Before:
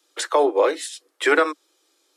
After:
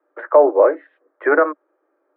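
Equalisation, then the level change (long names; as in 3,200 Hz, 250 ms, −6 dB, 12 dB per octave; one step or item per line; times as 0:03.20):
Butterworth low-pass 1,700 Hz 36 dB per octave
high-frequency loss of the air 73 metres
parametric band 600 Hz +9.5 dB 0.23 octaves
+2.5 dB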